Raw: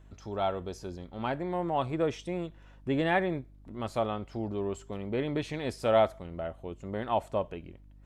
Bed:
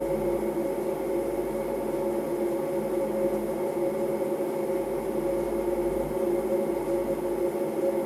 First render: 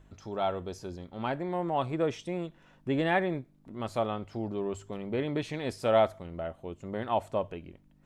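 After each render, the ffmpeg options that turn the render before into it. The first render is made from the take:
-af "bandreject=f=50:t=h:w=4,bandreject=f=100:t=h:w=4"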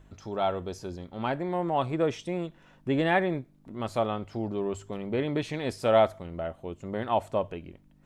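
-af "volume=1.33"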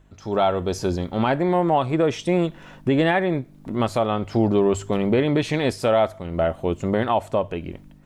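-af "dynaudnorm=f=120:g=5:m=5.62,alimiter=limit=0.316:level=0:latency=1:release=375"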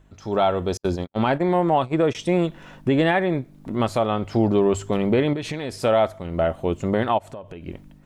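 -filter_complex "[0:a]asettb=1/sr,asplit=3[s0][s1][s2];[s0]atrim=end=0.774[s3];[s1]atrim=start=0.77:end=2.15,asetpts=PTS-STARTPTS,afade=t=in:d=0.004:c=qsin,afade=t=out:st=1.376:d=0.004:c=qsin,agate=range=0.00251:threshold=0.0501:ratio=16:release=100:detection=peak[s4];[s2]atrim=start=2.146[s5];[s3][s4]acrossfade=d=0.004:c1=hsin:c2=qsin[s6];[s6][s5]acrossfade=d=0.004:c1=qsin:c2=hsin,asettb=1/sr,asplit=3[s7][s8][s9];[s7]atrim=end=5.334[s10];[s8]atrim=start=5.33:end=5.77,asetpts=PTS-STARTPTS,afade=t=in:d=0.004:c=qsin,afade=t=out:st=0.436:d=0.004:c=qsin,acompressor=threshold=0.0631:ratio=6:attack=3.2:release=140:knee=1:detection=peak[s11];[s9]atrim=start=5.766[s12];[s10][s11]acrossfade=d=0.004:c1=hsin:c2=qsin[s13];[s13][s12]acrossfade=d=0.004:c1=qsin:c2=hsin,asplit=3[s14][s15][s16];[s14]afade=t=out:st=7.17:d=0.02[s17];[s15]acompressor=threshold=0.02:ratio=5:attack=3.2:release=140:knee=1:detection=peak,afade=t=in:st=7.17:d=0.02,afade=t=out:st=7.66:d=0.02[s18];[s16]afade=t=in:st=7.66:d=0.02[s19];[s17][s18][s19]amix=inputs=3:normalize=0"

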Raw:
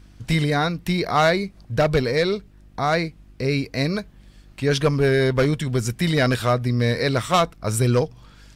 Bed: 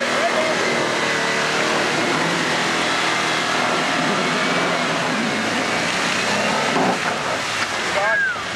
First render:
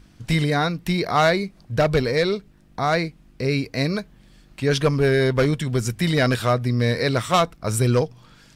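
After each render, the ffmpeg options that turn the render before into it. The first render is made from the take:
-af "bandreject=f=50:t=h:w=4,bandreject=f=100:t=h:w=4"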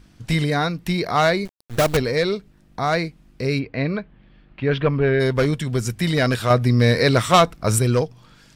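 -filter_complex "[0:a]asettb=1/sr,asplit=3[s0][s1][s2];[s0]atrim=end=1.454[s3];[s1]atrim=start=1.45:end=1.97,asetpts=PTS-STARTPTS,afade=t=in:d=0.004:c=qsin,afade=t=out:st=0.516:d=0.004:c=qsin,acrusher=bits=4:dc=4:mix=0:aa=0.000001[s4];[s2]atrim=start=1.966[s5];[s3][s4]acrossfade=d=0.004:c1=hsin:c2=qsin[s6];[s6][s5]acrossfade=d=0.004:c1=qsin:c2=hsin,asplit=3[s7][s8][s9];[s7]afade=t=out:st=3.58:d=0.02[s10];[s8]lowpass=f=3100:w=0.5412,lowpass=f=3100:w=1.3066,afade=t=in:st=3.58:d=0.02,afade=t=out:st=5.19:d=0.02[s11];[s9]afade=t=in:st=5.19:d=0.02[s12];[s10][s11][s12]amix=inputs=3:normalize=0,asettb=1/sr,asplit=3[s13][s14][s15];[s13]atrim=end=6.504[s16];[s14]atrim=start=6.5:end=7.79,asetpts=PTS-STARTPTS,afade=t=in:d=0.004:c=qsin,afade=t=out:st=1.286:d=0.004:c=qsin,acontrast=24[s17];[s15]atrim=start=7.786[s18];[s16][s17]acrossfade=d=0.004:c1=hsin:c2=qsin[s19];[s19][s18]acrossfade=d=0.004:c1=qsin:c2=hsin"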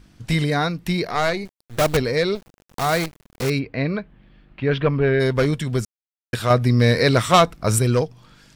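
-filter_complex "[0:a]asettb=1/sr,asplit=3[s0][s1][s2];[s0]atrim=end=1.064[s3];[s1]atrim=start=1.06:end=1.81,asetpts=PTS-STARTPTS,afade=t=in:d=0.004:c=qsin,afade=t=out:st=0.746:d=0.004:c=qsin,aeval=exprs='(tanh(3.98*val(0)+0.7)-tanh(0.7))/3.98':c=same[s4];[s2]atrim=start=1.806[s5];[s3][s4]acrossfade=d=0.004:c1=hsin:c2=qsin[s6];[s6][s5]acrossfade=d=0.004:c1=qsin:c2=hsin,asettb=1/sr,asplit=3[s7][s8][s9];[s7]atrim=end=2.354[s10];[s8]atrim=start=2.35:end=3.5,asetpts=PTS-STARTPTS,afade=t=in:d=0.004:c=qsin,afade=t=out:st=1.146:d=0.004:c=qsin,acrusher=bits=5:dc=4:mix=0:aa=0.000001[s11];[s9]atrim=start=3.496[s12];[s10][s11]acrossfade=d=0.004:c1=hsin:c2=qsin[s13];[s13][s12]acrossfade=d=0.004:c1=qsin:c2=hsin,asplit=3[s14][s15][s16];[s14]atrim=end=5.85,asetpts=PTS-STARTPTS,afade=t=out:st=5.846:d=0.004:c=hsin[s17];[s15]atrim=start=5.85:end=6.33,asetpts=PTS-STARTPTS,volume=0[s18];[s16]atrim=start=6.33,asetpts=PTS-STARTPTS,afade=t=in:d=0.004:c=hsin[s19];[s17][s18][s19]concat=n=3:v=0:a=1"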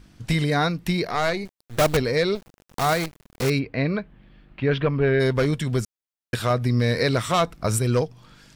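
-af "alimiter=limit=0.251:level=0:latency=1:release=317"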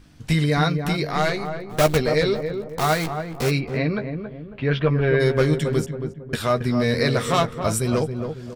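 -filter_complex "[0:a]asplit=2[s0][s1];[s1]adelay=13,volume=0.447[s2];[s0][s2]amix=inputs=2:normalize=0,asplit=2[s3][s4];[s4]adelay=274,lowpass=f=980:p=1,volume=0.501,asplit=2[s5][s6];[s6]adelay=274,lowpass=f=980:p=1,volume=0.44,asplit=2[s7][s8];[s8]adelay=274,lowpass=f=980:p=1,volume=0.44,asplit=2[s9][s10];[s10]adelay=274,lowpass=f=980:p=1,volume=0.44,asplit=2[s11][s12];[s12]adelay=274,lowpass=f=980:p=1,volume=0.44[s13];[s5][s7][s9][s11][s13]amix=inputs=5:normalize=0[s14];[s3][s14]amix=inputs=2:normalize=0"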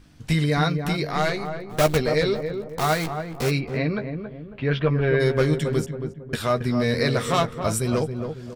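-af "volume=0.841"

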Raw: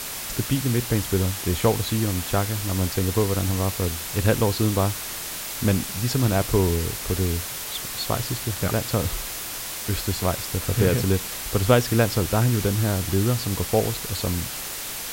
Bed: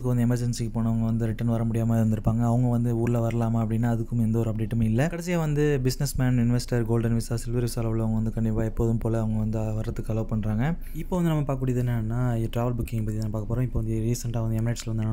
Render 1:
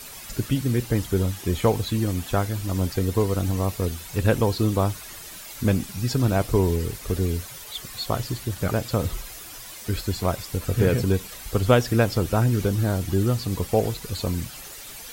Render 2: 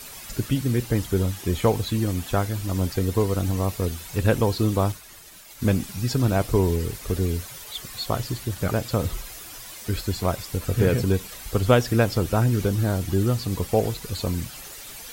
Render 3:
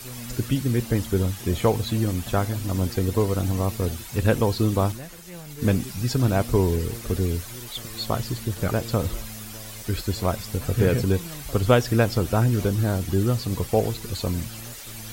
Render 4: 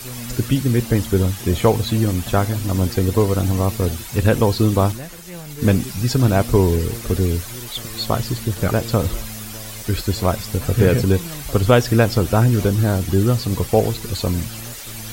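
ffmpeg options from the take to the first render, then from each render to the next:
-af "afftdn=nr=11:nf=-33"
-filter_complex "[0:a]asettb=1/sr,asplit=3[s0][s1][s2];[s0]atrim=end=4.924[s3];[s1]atrim=start=4.92:end=5.7,asetpts=PTS-STARTPTS,afade=t=in:d=0.004:c=qsin,afade=t=out:st=0.776:d=0.004:c=qsin,agate=range=0.0224:threshold=0.0178:ratio=3:release=100:detection=peak[s4];[s2]atrim=start=5.696[s5];[s3][s4]acrossfade=d=0.004:c1=hsin:c2=qsin[s6];[s6][s5]acrossfade=d=0.004:c1=qsin:c2=hsin"
-filter_complex "[1:a]volume=0.168[s0];[0:a][s0]amix=inputs=2:normalize=0"
-af "volume=1.88,alimiter=limit=0.891:level=0:latency=1"

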